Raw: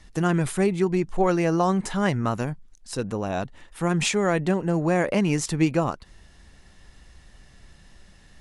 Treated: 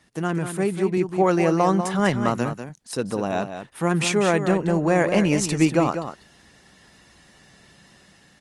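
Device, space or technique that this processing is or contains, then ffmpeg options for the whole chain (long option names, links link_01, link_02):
video call: -filter_complex "[0:a]asettb=1/sr,asplit=3[link_01][link_02][link_03];[link_01]atrim=end=0.974[link_04];[link_02]atrim=start=0.97:end=2.5,asetpts=PTS-STARTPTS,afade=type=in:duration=0.004:curve=qsin,afade=type=out:start_time=1.526:duration=0.004:curve=qsin,highpass=frequency=79:width=0.5412,highpass=frequency=79:width=1.3066[link_05];[link_03]atrim=start=2.496[link_06];[link_04][link_05]acrossfade=duration=0.004:curve1=hsin:curve2=qsin[link_07];[link_07][link_06]acrossfade=duration=0.004:curve1=qsin:curve2=hsin,highpass=150,aecho=1:1:194:0.355,dynaudnorm=framelen=620:gausssize=3:maxgain=6dB,volume=-2dB" -ar 48000 -c:a libopus -b:a 32k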